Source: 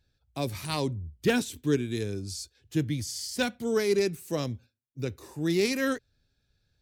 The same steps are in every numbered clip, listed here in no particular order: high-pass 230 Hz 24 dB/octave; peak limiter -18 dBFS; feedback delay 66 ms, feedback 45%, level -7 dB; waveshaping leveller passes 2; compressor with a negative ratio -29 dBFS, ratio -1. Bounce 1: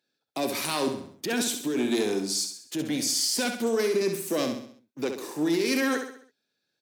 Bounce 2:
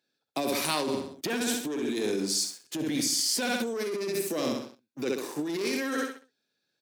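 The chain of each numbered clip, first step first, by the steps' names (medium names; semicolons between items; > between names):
compressor with a negative ratio > waveshaping leveller > high-pass > peak limiter > feedback delay; feedback delay > waveshaping leveller > high-pass > peak limiter > compressor with a negative ratio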